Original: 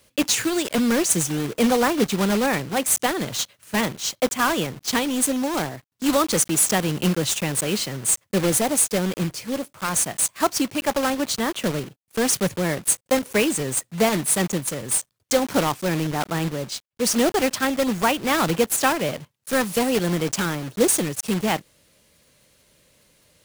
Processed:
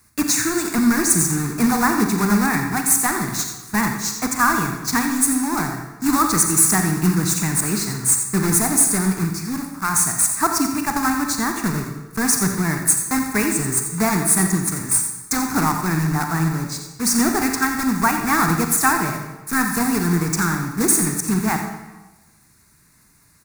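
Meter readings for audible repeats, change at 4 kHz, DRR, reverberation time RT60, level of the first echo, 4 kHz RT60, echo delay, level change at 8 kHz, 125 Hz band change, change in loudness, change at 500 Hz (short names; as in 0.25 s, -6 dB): 1, -2.5 dB, 4.0 dB, 1.1 s, -11.0 dB, 0.90 s, 87 ms, +4.5 dB, +5.5 dB, +3.5 dB, -6.0 dB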